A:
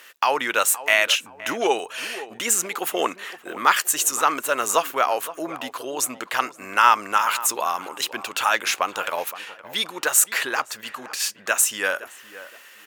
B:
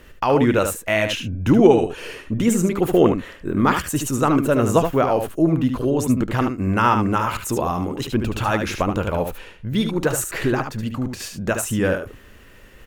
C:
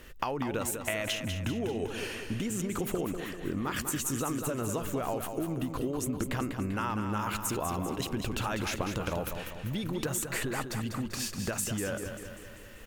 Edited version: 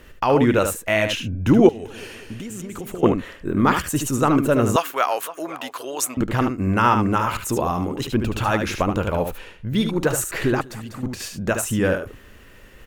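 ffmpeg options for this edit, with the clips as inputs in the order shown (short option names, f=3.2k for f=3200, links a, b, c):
-filter_complex "[2:a]asplit=2[a][b];[1:a]asplit=4[c][d][e][f];[c]atrim=end=1.692[g];[a]atrim=start=1.688:end=3.032[h];[d]atrim=start=3.028:end=4.762[i];[0:a]atrim=start=4.758:end=6.172[j];[e]atrim=start=6.168:end=10.612[k];[b]atrim=start=10.608:end=11.032[l];[f]atrim=start=11.028[m];[g][h]acrossfade=d=0.004:c1=hsin:c2=hsin[n];[n][i]acrossfade=d=0.004:c1=hsin:c2=hsin[o];[o][j]acrossfade=d=0.004:c1=hsin:c2=hsin[p];[p][k]acrossfade=d=0.004:c1=hsin:c2=hsin[q];[q][l]acrossfade=d=0.004:c1=hsin:c2=hsin[r];[r][m]acrossfade=d=0.004:c1=hsin:c2=hsin"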